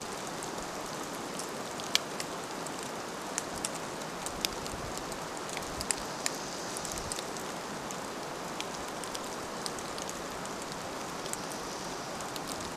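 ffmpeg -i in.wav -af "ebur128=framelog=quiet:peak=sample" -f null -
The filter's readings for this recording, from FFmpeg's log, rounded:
Integrated loudness:
  I:         -36.4 LUFS
  Threshold: -46.3 LUFS
Loudness range:
  LRA:         2.3 LU
  Threshold: -56.2 LUFS
  LRA low:   -37.5 LUFS
  LRA high:  -35.2 LUFS
Sample peak:
  Peak:       -2.0 dBFS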